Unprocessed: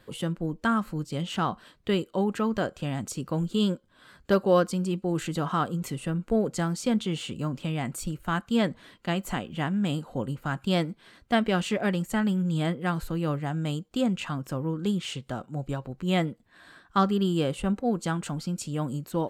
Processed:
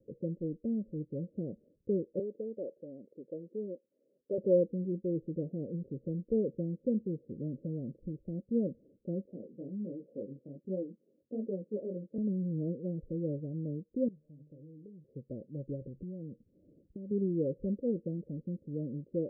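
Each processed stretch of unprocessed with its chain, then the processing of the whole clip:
0:02.19–0:04.38: high-pass filter 430 Hz + highs frequency-modulated by the lows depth 0.15 ms
0:09.25–0:12.18: high-pass filter 220 Hz + chorus effect 1.3 Hz, delay 15.5 ms, depth 7 ms
0:14.08–0:15.04: tuned comb filter 150 Hz, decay 0.24 s, mix 90% + downward compressor, threshold −41 dBFS
0:15.81–0:17.11: low-shelf EQ 250 Hz +11.5 dB + downward compressor 16 to 1, threshold −31 dBFS
whole clip: Butterworth low-pass 560 Hz 96 dB per octave; spectral tilt +3 dB per octave

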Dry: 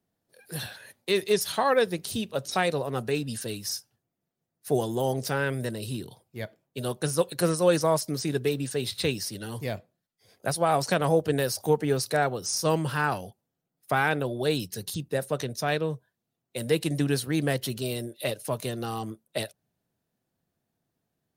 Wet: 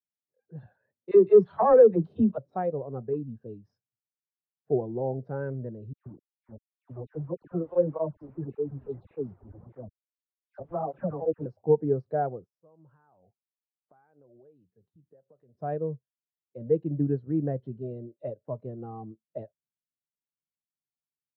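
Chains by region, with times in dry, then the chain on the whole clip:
0:01.11–0:02.38: all-pass dispersion lows, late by 59 ms, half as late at 430 Hz + leveller curve on the samples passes 2
0:03.13–0:03.67: parametric band 2,000 Hz −8 dB 0.32 octaves + hard clipping −22 dBFS
0:05.93–0:11.46: hold until the input has moved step −29.5 dBFS + all-pass dispersion lows, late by 130 ms, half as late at 2,000 Hz + through-zero flanger with one copy inverted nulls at 1.7 Hz, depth 6.9 ms
0:12.44–0:15.55: low-shelf EQ 360 Hz −7.5 dB + downward compressor 10 to 1, threshold −41 dBFS
whole clip: low-pass filter 1,000 Hz 12 dB per octave; every bin expanded away from the loudest bin 1.5 to 1; level +3.5 dB

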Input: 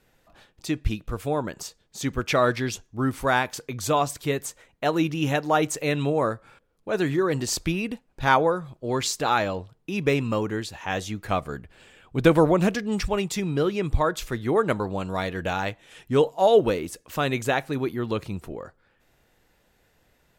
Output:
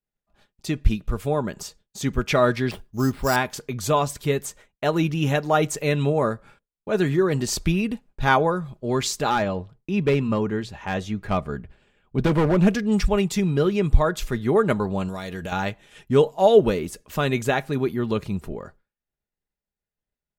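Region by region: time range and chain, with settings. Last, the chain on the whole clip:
0:02.71–0:03.36: high-shelf EQ 3,900 Hz −10 dB + sample-rate reduction 6,400 Hz
0:09.30–0:12.67: low-pass filter 3,100 Hz 6 dB per octave + mains-hum notches 60/120 Hz + hard clipping −17 dBFS
0:15.08–0:15.52: bass and treble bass −2 dB, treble +8 dB + downward compressor 3 to 1, threshold −32 dBFS
whole clip: downward expander −45 dBFS; low-shelf EQ 210 Hz +7.5 dB; comb filter 4.9 ms, depth 34%

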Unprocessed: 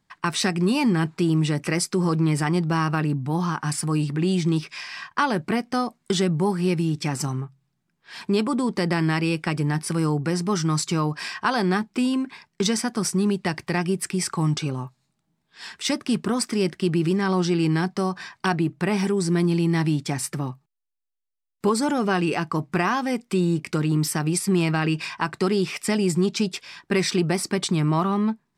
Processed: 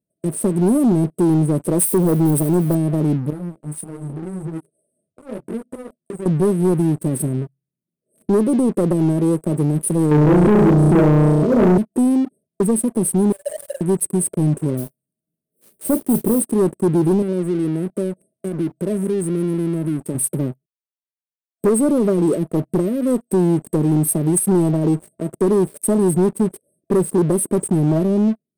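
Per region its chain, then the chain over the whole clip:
0:01.79–0:02.75: spike at every zero crossing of −26.5 dBFS + parametric band 1,200 Hz +9.5 dB 1.3 octaves
0:03.30–0:06.26: low-pass filter 11,000 Hz + downward compressor, threshold −29 dBFS + micro pitch shift up and down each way 29 cents
0:10.11–0:11.78: low-pass filter 2,600 Hz + flutter between parallel walls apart 5.7 metres, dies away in 0.84 s + envelope flattener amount 100%
0:13.32–0:13.81: Butterworth high-pass 550 Hz 72 dB per octave + comb filter 7 ms, depth 79% + level that may fall only so fast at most 80 dB per second
0:14.77–0:16.42: double-tracking delay 35 ms −11.5 dB + noise that follows the level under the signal 14 dB
0:17.22–0:20.15: downward compressor 2.5 to 1, threshold −27 dBFS + high-pass filter 130 Hz
whole clip: high-pass filter 240 Hz 6 dB per octave; brick-wall band-stop 660–8,200 Hz; leveller curve on the samples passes 3

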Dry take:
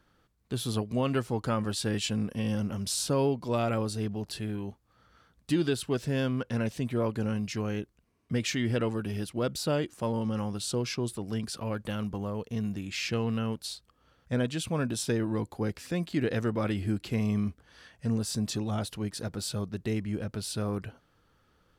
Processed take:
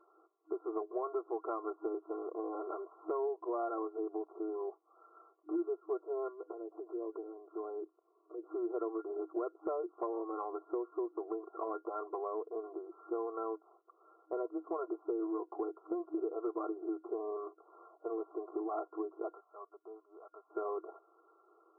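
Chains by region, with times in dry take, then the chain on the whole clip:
0:06.28–0:08.47: treble cut that deepens with the level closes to 510 Hz, closed at −25.5 dBFS + downward compressor 10 to 1, threshold −36 dBFS
0:19.34–0:20.50: guitar amp tone stack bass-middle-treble 10-0-10 + notch filter 1,500 Hz, Q 6.7
whole clip: brick-wall band-pass 320–1,400 Hz; comb filter 2.8 ms, depth 86%; downward compressor 4 to 1, threshold −39 dBFS; level +3.5 dB

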